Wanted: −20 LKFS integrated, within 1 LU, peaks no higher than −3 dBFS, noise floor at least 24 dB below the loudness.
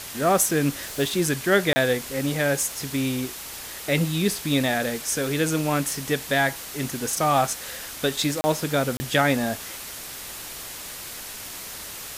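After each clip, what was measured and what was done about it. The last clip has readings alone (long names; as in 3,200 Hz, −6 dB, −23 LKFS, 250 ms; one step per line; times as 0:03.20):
number of dropouts 3; longest dropout 30 ms; background noise floor −37 dBFS; target noise floor −49 dBFS; integrated loudness −24.5 LKFS; sample peak −5.5 dBFS; target loudness −20.0 LKFS
→ repair the gap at 0:01.73/0:08.41/0:08.97, 30 ms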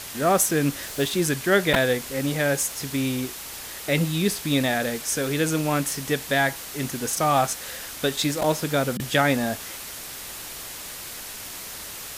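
number of dropouts 0; background noise floor −37 dBFS; target noise floor −49 dBFS
→ broadband denoise 12 dB, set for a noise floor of −37 dBFS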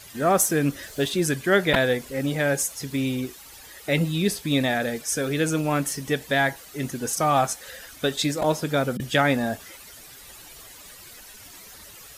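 background noise floor −46 dBFS; target noise floor −48 dBFS
→ broadband denoise 6 dB, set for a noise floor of −46 dBFS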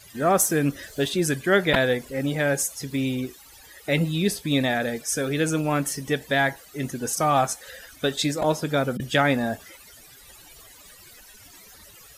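background noise floor −49 dBFS; integrated loudness −24.0 LKFS; sample peak −5.5 dBFS; target loudness −20.0 LKFS
→ level +4 dB
brickwall limiter −3 dBFS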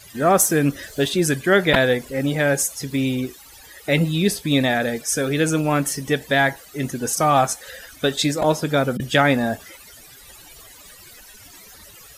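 integrated loudness −20.0 LKFS; sample peak −3.0 dBFS; background noise floor −45 dBFS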